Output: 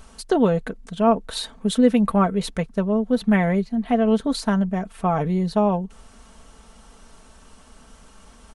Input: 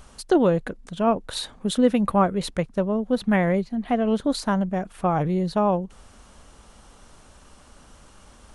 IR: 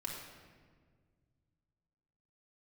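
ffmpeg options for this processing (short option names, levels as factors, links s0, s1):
-af "aecho=1:1:4.5:0.54"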